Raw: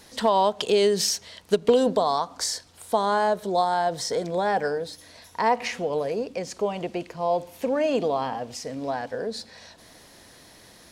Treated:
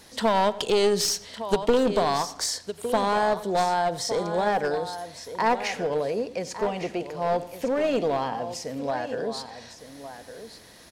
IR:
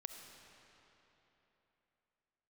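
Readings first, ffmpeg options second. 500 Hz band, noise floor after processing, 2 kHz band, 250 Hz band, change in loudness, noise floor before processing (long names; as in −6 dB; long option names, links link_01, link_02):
−1.0 dB, −49 dBFS, +1.0 dB, +0.5 dB, −0.5 dB, −52 dBFS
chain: -filter_complex "[0:a]asplit=2[link_01][link_02];[link_02]aecho=0:1:1159:0.251[link_03];[link_01][link_03]amix=inputs=2:normalize=0,aeval=exprs='clip(val(0),-1,0.0841)':channel_layout=same,asplit=2[link_04][link_05];[link_05]adelay=92,lowpass=frequency=4300:poles=1,volume=-18.5dB,asplit=2[link_06][link_07];[link_07]adelay=92,lowpass=frequency=4300:poles=1,volume=0.49,asplit=2[link_08][link_09];[link_09]adelay=92,lowpass=frequency=4300:poles=1,volume=0.49,asplit=2[link_10][link_11];[link_11]adelay=92,lowpass=frequency=4300:poles=1,volume=0.49[link_12];[link_06][link_08][link_10][link_12]amix=inputs=4:normalize=0[link_13];[link_04][link_13]amix=inputs=2:normalize=0"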